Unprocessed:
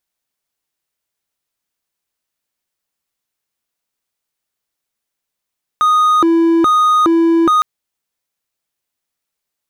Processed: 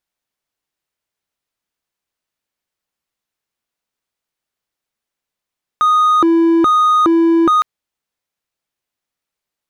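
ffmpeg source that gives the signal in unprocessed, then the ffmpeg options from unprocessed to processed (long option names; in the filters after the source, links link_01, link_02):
-f lavfi -i "aevalsrc='0.473*(1-4*abs(mod((786*t+454/1.2*(0.5-abs(mod(1.2*t,1)-0.5)))+0.25,1)-0.5))':duration=1.81:sample_rate=44100"
-af "highshelf=frequency=5800:gain=-7.5"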